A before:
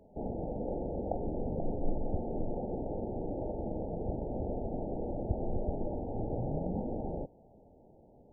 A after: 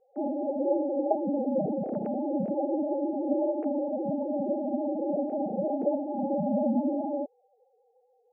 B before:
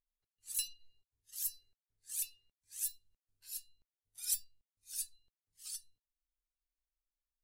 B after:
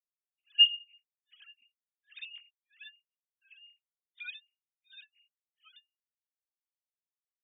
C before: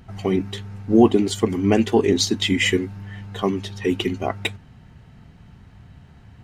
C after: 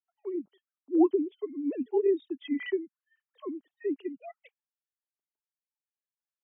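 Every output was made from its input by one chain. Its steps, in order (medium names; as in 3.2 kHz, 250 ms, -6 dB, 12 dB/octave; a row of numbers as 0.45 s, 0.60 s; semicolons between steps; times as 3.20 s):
formants replaced by sine waves; spectral contrast expander 1.5:1; peak normalisation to -12 dBFS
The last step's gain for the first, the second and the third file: +6.0 dB, +9.0 dB, -9.0 dB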